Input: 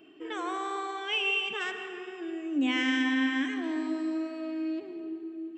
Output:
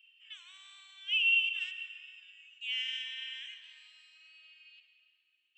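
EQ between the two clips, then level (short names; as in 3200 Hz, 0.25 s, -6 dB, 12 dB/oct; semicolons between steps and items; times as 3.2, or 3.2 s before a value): ladder high-pass 2600 Hz, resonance 75%; 0.0 dB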